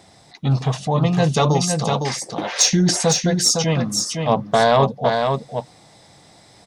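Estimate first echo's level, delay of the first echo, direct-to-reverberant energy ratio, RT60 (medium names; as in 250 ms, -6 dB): -5.0 dB, 508 ms, no reverb, no reverb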